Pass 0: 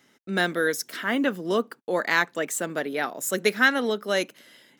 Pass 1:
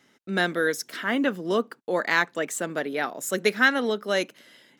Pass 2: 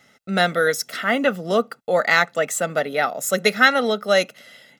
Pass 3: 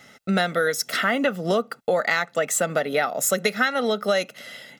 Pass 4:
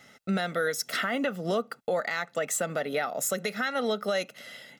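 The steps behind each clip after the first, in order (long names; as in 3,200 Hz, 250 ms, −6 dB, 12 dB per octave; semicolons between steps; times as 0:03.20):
high-shelf EQ 11,000 Hz −8 dB
comb filter 1.5 ms, depth 67%; level +5 dB
downward compressor 6 to 1, threshold −25 dBFS, peak gain reduction 15.5 dB; level +6 dB
brickwall limiter −13.5 dBFS, peak gain reduction 6 dB; level −5 dB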